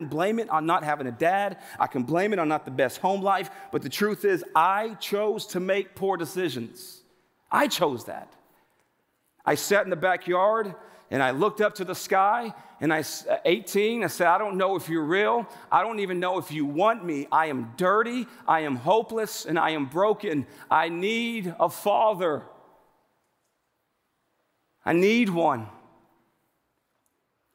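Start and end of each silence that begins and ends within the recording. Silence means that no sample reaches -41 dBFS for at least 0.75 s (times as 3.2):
8.24–9.47
22.52–24.86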